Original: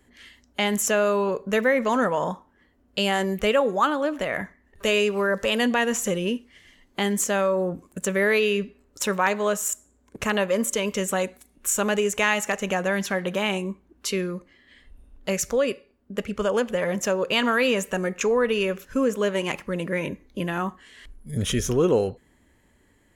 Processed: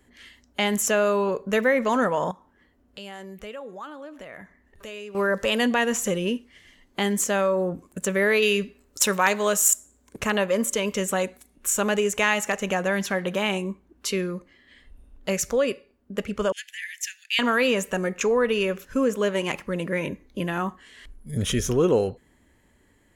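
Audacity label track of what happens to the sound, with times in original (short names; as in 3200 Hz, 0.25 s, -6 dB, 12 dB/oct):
2.310000	5.150000	compressor 2:1, threshold -49 dBFS
8.420000	10.200000	high shelf 3000 Hz +9 dB
16.520000	17.390000	steep high-pass 1700 Hz 96 dB/oct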